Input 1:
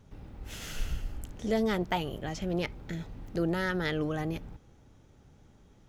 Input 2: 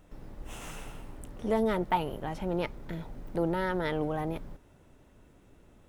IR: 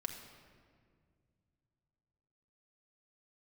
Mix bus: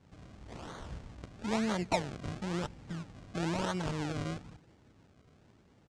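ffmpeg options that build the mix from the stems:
-filter_complex "[0:a]volume=-3.5dB,asplit=2[link_01][link_02];[link_02]volume=-22dB[link_03];[1:a]acrossover=split=520[link_04][link_05];[link_04]aeval=exprs='val(0)*(1-0.7/2+0.7/2*cos(2*PI*1.8*n/s))':channel_layout=same[link_06];[link_05]aeval=exprs='val(0)*(1-0.7/2-0.7/2*cos(2*PI*1.8*n/s))':channel_layout=same[link_07];[link_06][link_07]amix=inputs=2:normalize=0,adelay=0.5,volume=-7.5dB[link_08];[2:a]atrim=start_sample=2205[link_09];[link_03][link_09]afir=irnorm=-1:irlink=0[link_10];[link_01][link_08][link_10]amix=inputs=3:normalize=0,highpass=80,acrusher=samples=34:mix=1:aa=0.000001:lfo=1:lforange=34:lforate=1,lowpass=frequency=8000:width=0.5412,lowpass=frequency=8000:width=1.3066"

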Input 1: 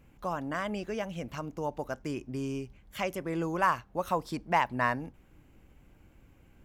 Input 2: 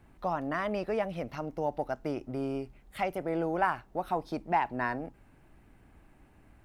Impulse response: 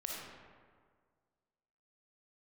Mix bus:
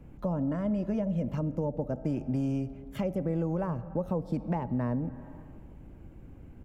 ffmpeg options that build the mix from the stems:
-filter_complex "[0:a]volume=2dB,asplit=2[link_01][link_02];[link_02]volume=-18.5dB[link_03];[1:a]volume=-1,adelay=3.1,volume=-7dB,asplit=2[link_04][link_05];[link_05]volume=-8dB[link_06];[2:a]atrim=start_sample=2205[link_07];[link_03][link_06]amix=inputs=2:normalize=0[link_08];[link_08][link_07]afir=irnorm=-1:irlink=0[link_09];[link_01][link_04][link_09]amix=inputs=3:normalize=0,tiltshelf=frequency=910:gain=8.5,acrossover=split=86|570[link_10][link_11][link_12];[link_10]acompressor=threshold=-47dB:ratio=4[link_13];[link_11]acompressor=threshold=-28dB:ratio=4[link_14];[link_12]acompressor=threshold=-45dB:ratio=4[link_15];[link_13][link_14][link_15]amix=inputs=3:normalize=0"

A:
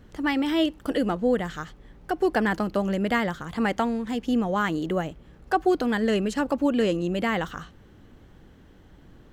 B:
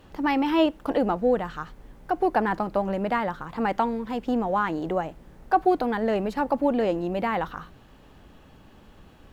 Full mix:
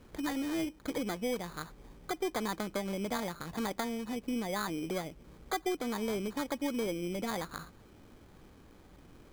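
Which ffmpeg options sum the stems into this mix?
ffmpeg -i stem1.wav -i stem2.wav -filter_complex "[0:a]bass=frequency=250:gain=-5,treble=frequency=4000:gain=-13,acrusher=samples=16:mix=1:aa=0.000001,aeval=exprs='0.299*(cos(1*acos(clip(val(0)/0.299,-1,1)))-cos(1*PI/2))+0.0106*(cos(4*acos(clip(val(0)/0.299,-1,1)))-cos(4*PI/2))':channel_layout=same,volume=-2dB[link_01];[1:a]volume=-15.5dB[link_02];[link_01][link_02]amix=inputs=2:normalize=0,acompressor=threshold=-38dB:ratio=2" out.wav

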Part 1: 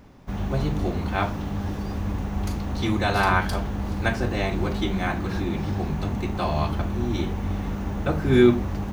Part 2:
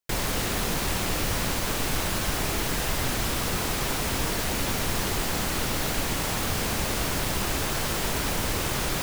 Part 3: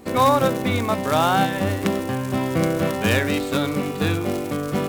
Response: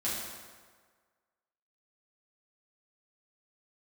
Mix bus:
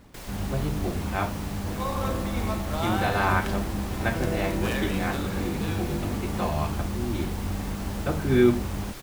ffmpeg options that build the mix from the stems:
-filter_complex "[0:a]lowpass=3500,volume=-3dB,asplit=2[link_01][link_02];[1:a]adelay=50,volume=-13.5dB[link_03];[2:a]adelay=1600,volume=-12.5dB,asplit=2[link_04][link_05];[link_05]volume=-9.5dB[link_06];[link_02]apad=whole_len=286144[link_07];[link_04][link_07]sidechaingate=range=-33dB:threshold=-29dB:ratio=16:detection=peak[link_08];[3:a]atrim=start_sample=2205[link_09];[link_06][link_09]afir=irnorm=-1:irlink=0[link_10];[link_01][link_03][link_08][link_10]amix=inputs=4:normalize=0,acrusher=bits=9:mix=0:aa=0.000001"

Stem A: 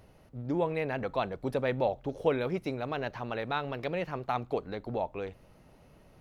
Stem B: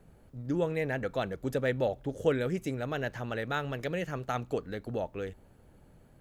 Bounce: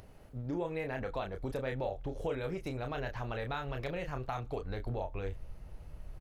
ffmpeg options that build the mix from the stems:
ffmpeg -i stem1.wav -i stem2.wav -filter_complex "[0:a]asubboost=boost=5.5:cutoff=100,acompressor=threshold=-34dB:ratio=3,volume=-1.5dB,asplit=2[link_01][link_02];[1:a]highpass=frequency=280:width=0.5412,highpass=frequency=280:width=1.3066,adelay=29,volume=-1.5dB[link_03];[link_02]apad=whole_len=274795[link_04];[link_03][link_04]sidechaincompress=threshold=-42dB:ratio=8:attack=16:release=1060[link_05];[link_01][link_05]amix=inputs=2:normalize=0,lowshelf=frequency=63:gain=8.5,acompressor=mode=upward:threshold=-52dB:ratio=2.5" out.wav

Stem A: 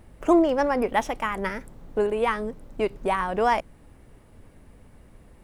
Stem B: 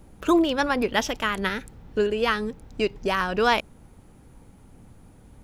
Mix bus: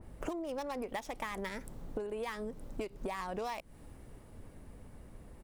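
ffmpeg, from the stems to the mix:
ffmpeg -i stem1.wav -i stem2.wav -filter_complex "[0:a]equalizer=frequency=2400:width_type=o:width=1.7:gain=-3.5,acompressor=threshold=-26dB:ratio=2.5,adynamicequalizer=threshold=0.00562:dfrequency=2200:dqfactor=0.7:tfrequency=2200:tqfactor=0.7:attack=5:release=100:ratio=0.375:range=2:mode=boostabove:tftype=highshelf,volume=-1dB[link_01];[1:a]highpass=1400,acrusher=bits=3:mix=0:aa=0.5,adelay=0.4,volume=-8.5dB[link_02];[link_01][link_02]amix=inputs=2:normalize=0,acompressor=threshold=-35dB:ratio=12" out.wav

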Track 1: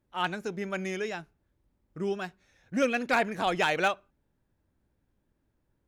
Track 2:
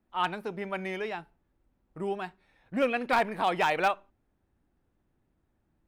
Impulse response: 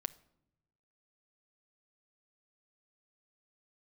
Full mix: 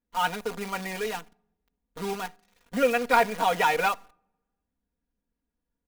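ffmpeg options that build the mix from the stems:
-filter_complex "[0:a]volume=-12dB[link_01];[1:a]acrusher=bits=7:dc=4:mix=0:aa=0.000001,adelay=2.1,volume=-3dB,asplit=2[link_02][link_03];[link_03]volume=-7dB[link_04];[2:a]atrim=start_sample=2205[link_05];[link_04][link_05]afir=irnorm=-1:irlink=0[link_06];[link_01][link_02][link_06]amix=inputs=3:normalize=0,aecho=1:1:4.2:0.94"

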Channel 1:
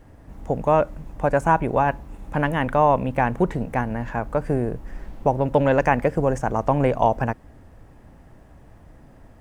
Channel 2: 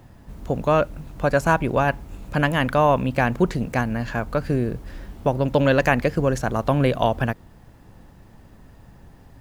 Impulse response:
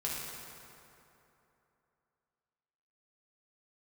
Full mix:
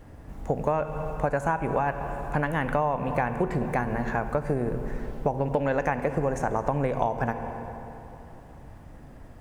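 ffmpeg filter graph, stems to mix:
-filter_complex "[0:a]volume=-0.5dB,asplit=2[link_01][link_02];[link_02]volume=-11.5dB[link_03];[1:a]volume=-1,volume=-14.5dB[link_04];[2:a]atrim=start_sample=2205[link_05];[link_03][link_05]afir=irnorm=-1:irlink=0[link_06];[link_01][link_04][link_06]amix=inputs=3:normalize=0,acompressor=threshold=-22dB:ratio=6"

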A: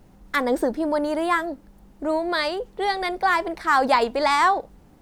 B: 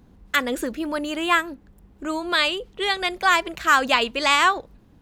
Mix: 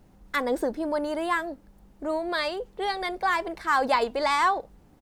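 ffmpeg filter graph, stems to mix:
ffmpeg -i stem1.wav -i stem2.wav -filter_complex "[0:a]volume=-4.5dB[link_01];[1:a]adelay=1.6,volume=-19dB[link_02];[link_01][link_02]amix=inputs=2:normalize=0" out.wav

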